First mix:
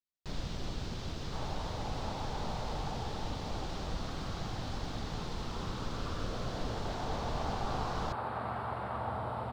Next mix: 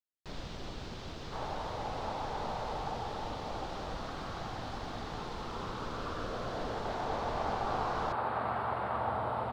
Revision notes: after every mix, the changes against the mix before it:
second sound +4.0 dB
master: add bass and treble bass −6 dB, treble −5 dB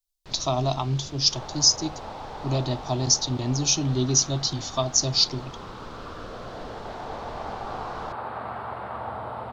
speech: unmuted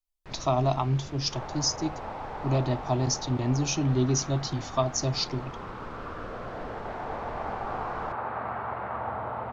master: add high shelf with overshoot 2,900 Hz −8 dB, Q 1.5

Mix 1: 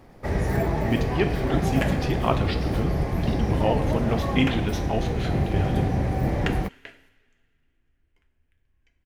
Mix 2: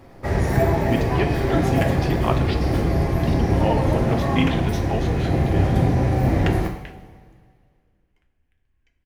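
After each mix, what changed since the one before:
first sound: send on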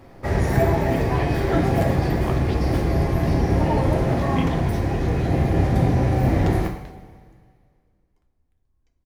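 speech −8.5 dB
second sound: add flat-topped bell 2,200 Hz −13.5 dB 1.3 octaves

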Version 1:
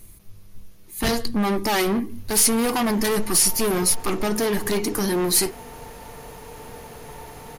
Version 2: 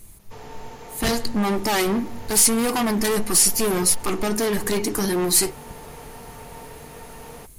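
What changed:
speech: add parametric band 7,700 Hz +6 dB 0.37 octaves
background: entry −2.05 s

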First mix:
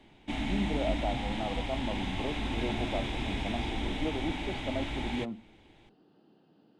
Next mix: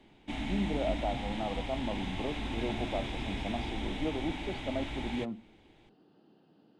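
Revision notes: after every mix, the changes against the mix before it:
background −3.0 dB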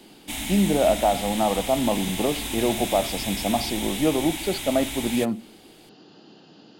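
speech +11.5 dB
master: remove head-to-tape spacing loss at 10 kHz 33 dB

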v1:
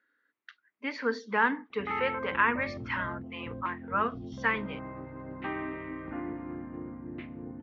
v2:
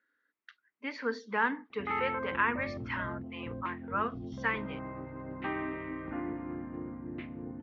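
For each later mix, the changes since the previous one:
speech −3.5 dB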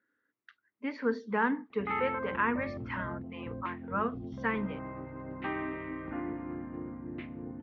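speech: add spectral tilt −3 dB per octave

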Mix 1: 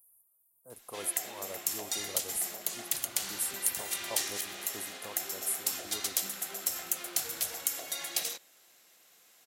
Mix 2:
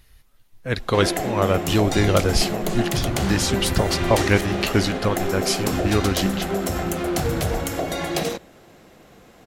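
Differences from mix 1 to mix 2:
speech: remove inverse Chebyshev band-stop filter 2,100–4,700 Hz, stop band 60 dB
master: remove first difference

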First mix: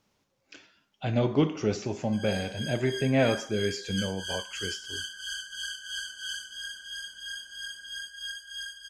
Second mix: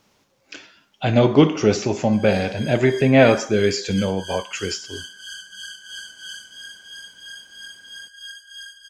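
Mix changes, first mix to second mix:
speech +11.5 dB
master: add low-shelf EQ 170 Hz −5 dB

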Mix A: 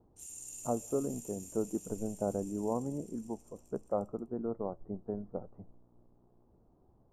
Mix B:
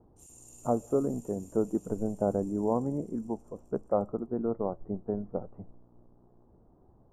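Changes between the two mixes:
speech +5.5 dB
background −7.5 dB

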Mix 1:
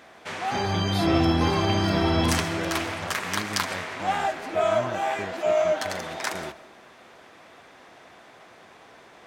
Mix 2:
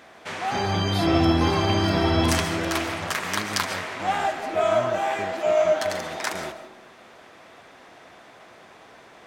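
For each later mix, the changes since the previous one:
background: send +8.5 dB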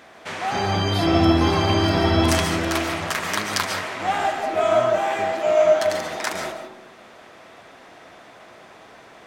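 background: send +6.5 dB

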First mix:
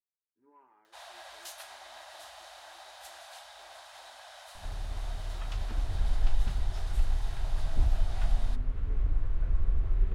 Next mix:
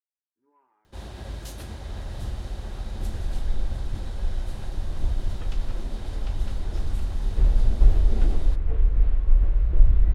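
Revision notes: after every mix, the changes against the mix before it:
speech −4.5 dB
first sound: remove elliptic high-pass filter 640 Hz, stop band 40 dB
second sound: entry −2.75 s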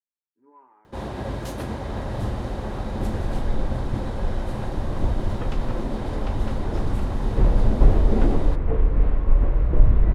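master: add octave-band graphic EQ 125/250/500/1,000/2,000 Hz +8/+10/+9/+10/+5 dB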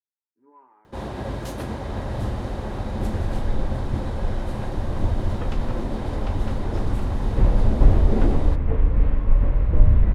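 reverb: on, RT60 1.0 s

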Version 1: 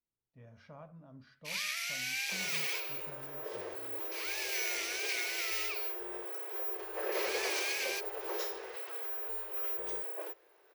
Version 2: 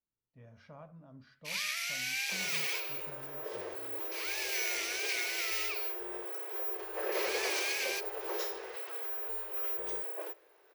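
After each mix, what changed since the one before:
reverb: on, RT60 0.70 s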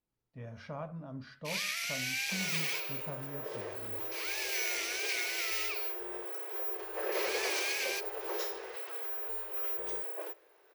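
speech +10.0 dB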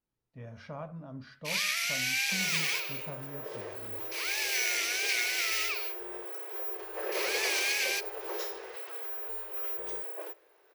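first sound +5.0 dB

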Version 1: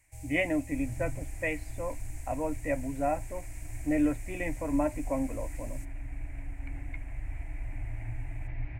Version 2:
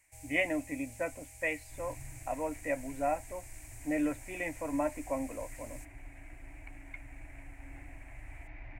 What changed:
second sound: entry +1.00 s
master: add low-shelf EQ 270 Hz −11.5 dB

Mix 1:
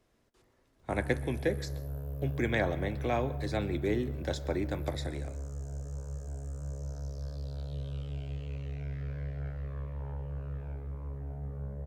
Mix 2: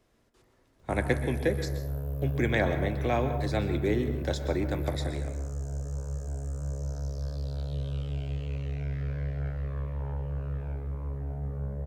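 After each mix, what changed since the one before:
speech: send +11.5 dB
background +5.0 dB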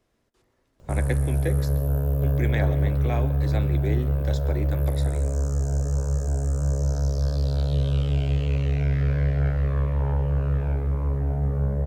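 speech: send −10.5 dB
background +10.0 dB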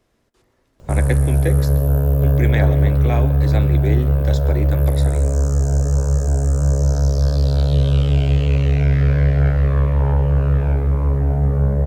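speech +6.0 dB
background +7.5 dB

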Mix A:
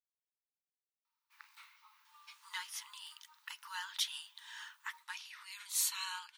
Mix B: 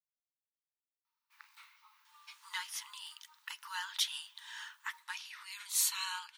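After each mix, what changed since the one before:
reverb: on, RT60 2.3 s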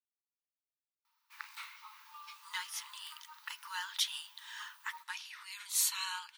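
background +11.0 dB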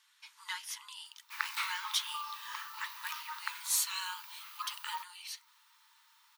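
speech: entry −2.05 s
background +11.0 dB

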